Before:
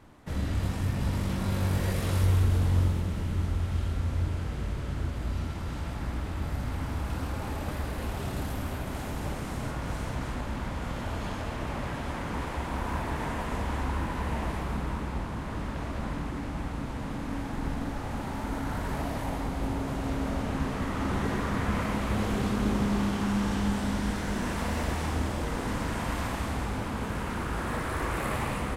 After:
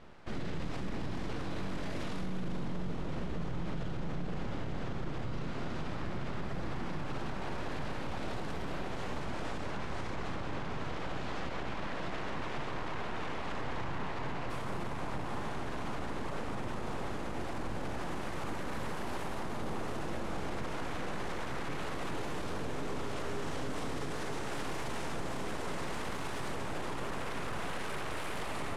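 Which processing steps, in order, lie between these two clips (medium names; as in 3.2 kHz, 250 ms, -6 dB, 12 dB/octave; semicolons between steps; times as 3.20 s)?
full-wave rectifier; low-pass 5.3 kHz 12 dB/octave, from 14.50 s 11 kHz; feedback echo behind a band-pass 462 ms, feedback 84%, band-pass 640 Hz, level -9.5 dB; peak limiter -29 dBFS, peak gain reduction 15 dB; trim +2 dB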